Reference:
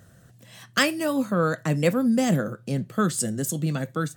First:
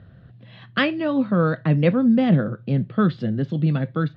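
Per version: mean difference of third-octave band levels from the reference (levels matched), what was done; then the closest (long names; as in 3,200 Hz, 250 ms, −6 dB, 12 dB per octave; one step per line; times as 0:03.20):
7.0 dB: Butterworth low-pass 4,000 Hz 48 dB per octave
low-shelf EQ 260 Hz +8.5 dB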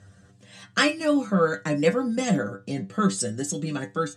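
4.0 dB: low-pass filter 8,300 Hz 24 dB per octave
stiff-string resonator 96 Hz, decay 0.22 s, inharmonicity 0.002
level +8.5 dB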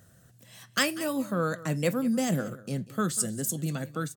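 2.5 dB: high-shelf EQ 6,000 Hz +7 dB
on a send: single-tap delay 191 ms −18 dB
on the sum: level −5.5 dB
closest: third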